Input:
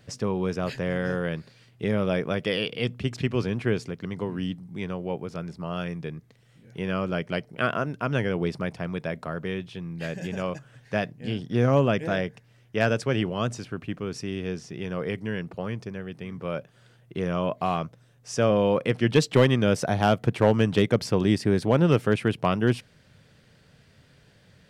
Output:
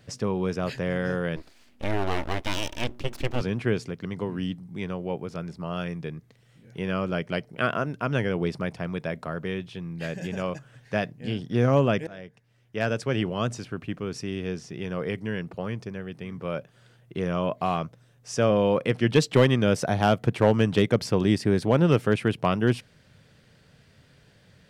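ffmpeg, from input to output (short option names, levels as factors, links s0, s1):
-filter_complex "[0:a]asettb=1/sr,asplit=3[s0][s1][s2];[s0]atrim=end=1.364[s3];[s1]atrim=start=1.36:end=3.41,asetpts=PTS-STARTPTS,afade=t=in:d=0.004:c=qsin,afade=t=out:st=2.046:d=0.004:c=qsin,aeval=exprs='abs(val(0))':c=same[s4];[s2]atrim=start=3.406[s5];[s3][s4]acrossfade=d=0.004:c1=hsin:c2=qsin[s6];[s6][s5]acrossfade=d=0.004:c1=qsin:c2=hsin,asplit=2[s7][s8];[s7]atrim=end=12.07,asetpts=PTS-STARTPTS,afade=t=out:st=12.066:d=0.004:c=hsin:silence=0.0944061[s9];[s8]atrim=start=12.07,asetpts=PTS-STARTPTS,afade=t=in:d=1.22:silence=0.0944061[s10];[s9][s10]concat=n=2:v=0:a=1"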